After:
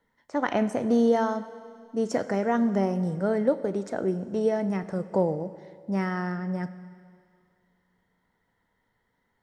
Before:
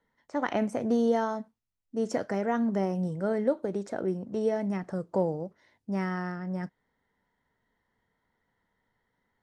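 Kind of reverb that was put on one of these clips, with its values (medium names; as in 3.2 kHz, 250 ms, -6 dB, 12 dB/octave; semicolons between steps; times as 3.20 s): Schroeder reverb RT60 2.2 s, combs from 30 ms, DRR 13.5 dB; trim +3 dB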